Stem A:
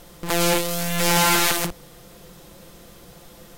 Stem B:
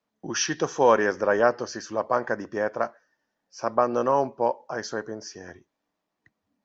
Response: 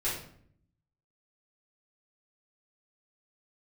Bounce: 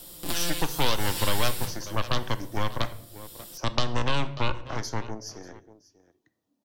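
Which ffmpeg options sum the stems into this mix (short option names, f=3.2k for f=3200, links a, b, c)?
-filter_complex "[0:a]bandreject=f=6.3k:w=5.4,volume=-7.5dB,asplit=2[a][b];[b]volume=-18dB[c];[1:a]equalizer=f=430:w=0.48:g=11.5,aeval=exprs='1.33*(cos(1*acos(clip(val(0)/1.33,-1,1)))-cos(1*PI/2))+0.237*(cos(3*acos(clip(val(0)/1.33,-1,1)))-cos(3*PI/2))+0.15*(cos(8*acos(clip(val(0)/1.33,-1,1)))-cos(8*PI/2))':c=same,volume=-5.5dB,asplit=4[d][e][f][g];[e]volume=-17.5dB[h];[f]volume=-20dB[i];[g]apad=whole_len=157682[j];[a][j]sidechaincompress=threshold=-30dB:ratio=8:attack=12:release=550[k];[2:a]atrim=start_sample=2205[l];[c][h]amix=inputs=2:normalize=0[m];[m][l]afir=irnorm=-1:irlink=0[n];[i]aecho=0:1:589:1[o];[k][d][n][o]amix=inputs=4:normalize=0,equalizer=f=300:w=6.5:g=7.5,aexciter=amount=4.3:drive=2.9:freq=3k,acrossover=split=230|690|1600|5300[p][q][r][s][t];[p]acompressor=threshold=-20dB:ratio=4[u];[q]acompressor=threshold=-46dB:ratio=4[v];[r]acompressor=threshold=-31dB:ratio=4[w];[s]acompressor=threshold=-30dB:ratio=4[x];[t]acompressor=threshold=-35dB:ratio=4[y];[u][v][w][x][y]amix=inputs=5:normalize=0"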